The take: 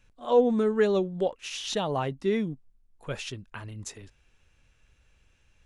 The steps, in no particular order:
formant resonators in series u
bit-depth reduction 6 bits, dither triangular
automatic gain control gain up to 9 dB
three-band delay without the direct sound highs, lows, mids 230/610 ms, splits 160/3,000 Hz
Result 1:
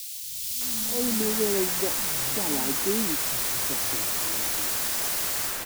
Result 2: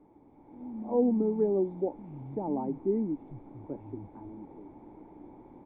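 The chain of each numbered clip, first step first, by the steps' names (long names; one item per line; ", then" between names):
formant resonators in series, then bit-depth reduction, then automatic gain control, then three-band delay without the direct sound
three-band delay without the direct sound, then bit-depth reduction, then formant resonators in series, then automatic gain control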